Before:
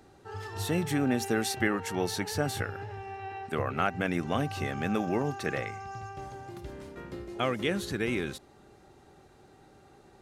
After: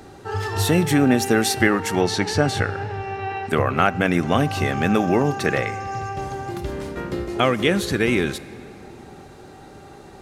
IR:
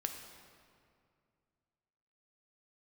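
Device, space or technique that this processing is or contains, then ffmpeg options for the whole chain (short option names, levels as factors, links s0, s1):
ducked reverb: -filter_complex "[0:a]asplit=3[s0][s1][s2];[1:a]atrim=start_sample=2205[s3];[s1][s3]afir=irnorm=-1:irlink=0[s4];[s2]apad=whole_len=450385[s5];[s4][s5]sidechaincompress=threshold=0.0282:ratio=8:attack=8.5:release=1360,volume=0.891[s6];[s0][s6]amix=inputs=2:normalize=0,asettb=1/sr,asplit=3[s7][s8][s9];[s7]atrim=end=2.014[s10];[s8]atrim=start=2.01:end=3.47,asetpts=PTS-STARTPTS,afade=t=in:d=0.004:c=qsin,afade=t=out:st=1.456:d=0.004:c=qsin,lowpass=6700[s11];[s9]atrim=start=3.466[s12];[s10][s11]acrossfade=d=0.004:c1=hsin:c2=qsin[s13];[s13][s12]acrossfade=d=0.004:c1=qsin:c2=hsin,volume=2.66"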